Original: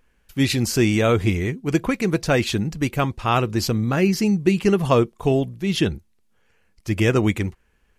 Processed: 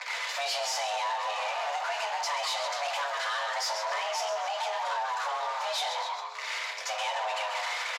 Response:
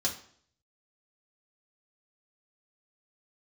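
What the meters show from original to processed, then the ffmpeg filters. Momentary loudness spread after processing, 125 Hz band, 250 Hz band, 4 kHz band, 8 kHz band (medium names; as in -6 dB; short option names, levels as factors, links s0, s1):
3 LU, under -40 dB, under -40 dB, -1.5 dB, -4.0 dB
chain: -filter_complex "[0:a]aeval=exprs='val(0)+0.5*0.0708*sgn(val(0))':c=same,asplit=5[s0][s1][s2][s3][s4];[s1]adelay=134,afreqshift=99,volume=0.335[s5];[s2]adelay=268,afreqshift=198,volume=0.138[s6];[s3]adelay=402,afreqshift=297,volume=0.0562[s7];[s4]adelay=536,afreqshift=396,volume=0.0232[s8];[s0][s5][s6][s7][s8]amix=inputs=5:normalize=0,acompressor=threshold=0.112:ratio=6,bandreject=f=50:t=h:w=6,bandreject=f=100:t=h:w=6[s9];[1:a]atrim=start_sample=2205,atrim=end_sample=6615[s10];[s9][s10]afir=irnorm=-1:irlink=0,acrossover=split=380|3000[s11][s12][s13];[s12]acompressor=threshold=0.0562:ratio=6[s14];[s11][s14][s13]amix=inputs=3:normalize=0,acrossover=split=410 4200:gain=0.0891 1 0.2[s15][s16][s17];[s15][s16][s17]amix=inputs=3:normalize=0,asoftclip=type=tanh:threshold=0.0473,lowpass=9500,afreqshift=430,volume=0.891"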